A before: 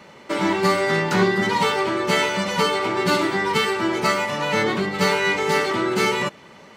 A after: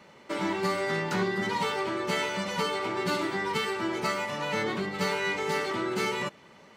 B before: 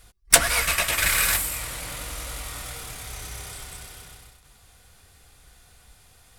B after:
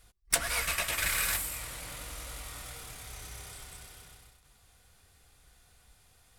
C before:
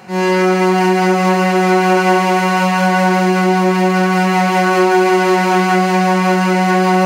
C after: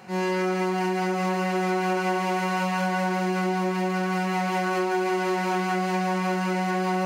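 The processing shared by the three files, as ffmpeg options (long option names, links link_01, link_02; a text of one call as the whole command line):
ffmpeg -i in.wav -af "acompressor=threshold=-16dB:ratio=2.5,volume=-8dB" out.wav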